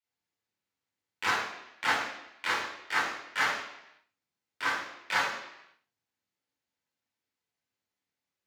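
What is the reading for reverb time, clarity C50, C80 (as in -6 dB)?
0.85 s, 2.0 dB, 5.5 dB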